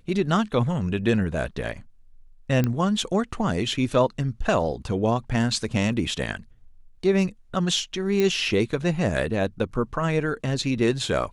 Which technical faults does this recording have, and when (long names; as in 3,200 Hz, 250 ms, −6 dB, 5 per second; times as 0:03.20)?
0:02.64: click −11 dBFS
0:08.20: click −11 dBFS